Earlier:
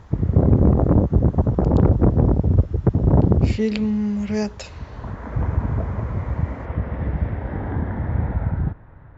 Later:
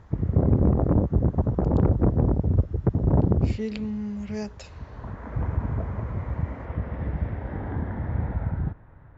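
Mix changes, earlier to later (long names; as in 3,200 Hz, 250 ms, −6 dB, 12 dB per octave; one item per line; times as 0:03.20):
speech −9.0 dB
background −5.0 dB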